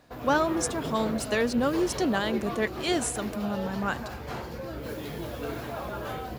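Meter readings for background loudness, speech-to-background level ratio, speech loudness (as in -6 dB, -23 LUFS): -35.5 LUFS, 7.0 dB, -28.5 LUFS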